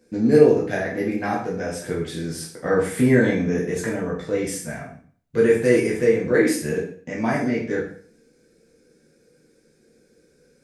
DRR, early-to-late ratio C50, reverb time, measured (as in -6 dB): -5.0 dB, 5.0 dB, 0.50 s